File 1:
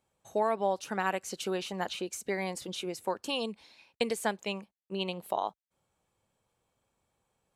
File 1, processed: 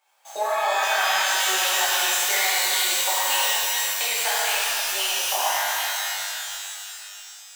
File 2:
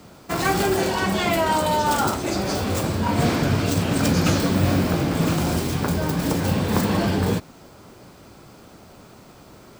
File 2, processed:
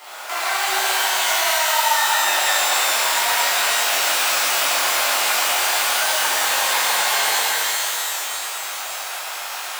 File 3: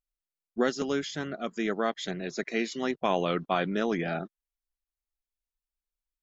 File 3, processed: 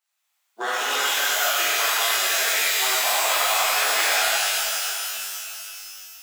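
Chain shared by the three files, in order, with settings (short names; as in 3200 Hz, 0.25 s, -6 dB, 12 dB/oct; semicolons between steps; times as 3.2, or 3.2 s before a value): median filter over 9 samples; Chebyshev high-pass 770 Hz, order 3; high shelf 2100 Hz +11 dB; in parallel at -8 dB: soft clip -23 dBFS; on the sum: compressor 10:1, threshold -34 dBFS; shimmer reverb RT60 2.9 s, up +12 st, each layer -2 dB, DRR -11 dB; gain +4 dB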